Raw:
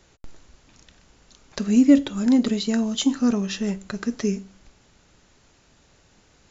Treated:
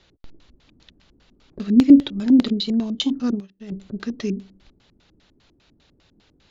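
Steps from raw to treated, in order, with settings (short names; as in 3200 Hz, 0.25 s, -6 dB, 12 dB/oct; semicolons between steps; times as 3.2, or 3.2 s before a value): LFO low-pass square 5 Hz 310–3900 Hz; 3.22–3.72 upward expander 2.5:1, over -35 dBFS; gain -2.5 dB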